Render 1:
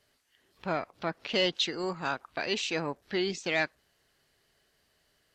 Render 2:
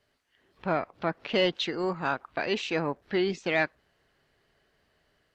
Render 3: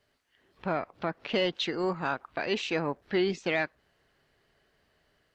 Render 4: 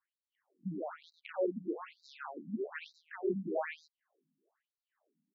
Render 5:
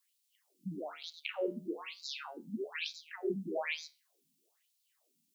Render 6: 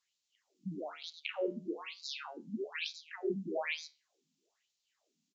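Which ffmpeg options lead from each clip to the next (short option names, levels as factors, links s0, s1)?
-filter_complex "[0:a]highshelf=f=4800:g=-11.5,acrossover=split=3000[s0][s1];[s0]dynaudnorm=f=210:g=3:m=1.58[s2];[s2][s1]amix=inputs=2:normalize=0"
-af "alimiter=limit=0.141:level=0:latency=1:release=238"
-af "aecho=1:1:99.13|227.4:0.562|0.447,adynamicsmooth=sensitivity=2:basefreq=1200,afftfilt=real='re*between(b*sr/1024,200*pow(5400/200,0.5+0.5*sin(2*PI*1.1*pts/sr))/1.41,200*pow(5400/200,0.5+0.5*sin(2*PI*1.1*pts/sr))*1.41)':imag='im*between(b*sr/1024,200*pow(5400/200,0.5+0.5*sin(2*PI*1.1*pts/sr))/1.41,200*pow(5400/200,0.5+0.5*sin(2*PI*1.1*pts/sr))*1.41)':win_size=1024:overlap=0.75,volume=0.794"
-filter_complex "[0:a]flanger=delay=7.7:depth=6.1:regen=-77:speed=0.38:shape=triangular,acrossover=split=140[s0][s1];[s1]aexciter=amount=6.5:drive=5.7:freq=2300[s2];[s0][s2]amix=inputs=2:normalize=0,volume=1.33"
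-af "aresample=16000,aresample=44100"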